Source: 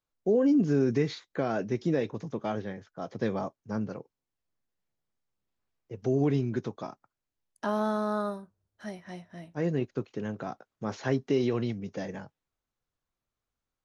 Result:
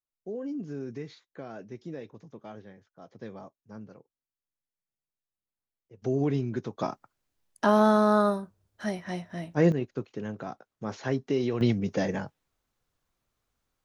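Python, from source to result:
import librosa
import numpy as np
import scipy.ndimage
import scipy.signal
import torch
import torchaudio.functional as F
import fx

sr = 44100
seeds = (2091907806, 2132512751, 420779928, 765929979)

y = fx.gain(x, sr, db=fx.steps((0.0, -12.0), (6.02, -1.0), (6.79, 8.0), (9.72, -1.0), (11.61, 8.0)))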